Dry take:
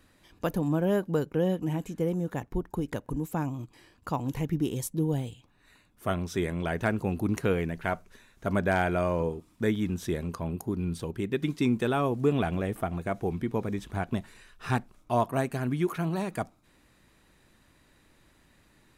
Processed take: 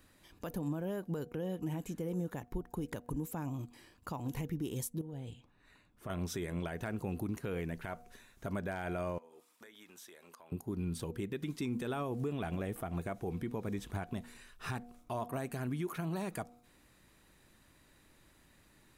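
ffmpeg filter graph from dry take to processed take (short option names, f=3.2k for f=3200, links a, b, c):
-filter_complex "[0:a]asettb=1/sr,asplit=3[a][b][c];[a]atrim=end=5.014[d];[b]atrim=start=5.01:end=6.1,asetpts=PTS-STARTPTS,afade=t=in:d=0.004:c=qsin,afade=t=out:st=1.086:d=0.004:c=qsin,aemphasis=mode=reproduction:type=50kf,acompressor=threshold=-34dB:ratio=16:attack=3.2:release=140:knee=1:detection=peak[e];[c]atrim=start=6.096[f];[d][e]acrossfade=d=0.004:c1=hsin:c2=qsin[g];[g][f]acrossfade=d=0.004:c1=qsin:c2=hsin,asettb=1/sr,asplit=3[h][i][j];[h]atrim=end=9.184[k];[i]atrim=start=9.18:end=10.52,asetpts=PTS-STARTPTS,afade=t=in:d=0.004:c=qsin,afade=t=out:st=1.336:d=0.004:c=qsin,highpass=710,acompressor=threshold=-49dB:ratio=10:attack=3.2:release=140:knee=1:detection=peak[l];[j]atrim=start=10.516[m];[k][l]acrossfade=d=0.004:c1=hsin:c2=qsin[n];[n][m]acrossfade=d=0.004:c1=qsin:c2=hsin,highshelf=f=8.9k:g=7,bandreject=f=240.4:t=h:w=4,bandreject=f=480.8:t=h:w=4,bandreject=f=721.2:t=h:w=4,alimiter=level_in=1.5dB:limit=-24dB:level=0:latency=1:release=145,volume=-1.5dB,volume=-3dB"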